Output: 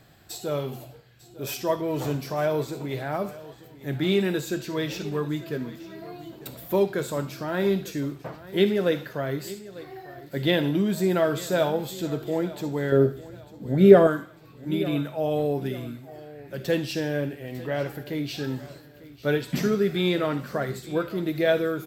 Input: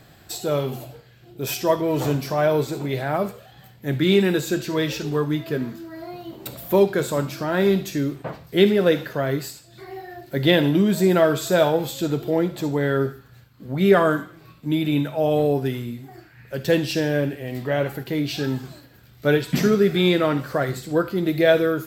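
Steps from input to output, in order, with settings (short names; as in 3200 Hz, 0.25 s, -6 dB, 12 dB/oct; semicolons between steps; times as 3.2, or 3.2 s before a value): 12.92–14.07 resonant low shelf 750 Hz +7.5 dB, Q 1.5; on a send: feedback echo 0.898 s, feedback 39%, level -18 dB; on the sum: gain -5.5 dB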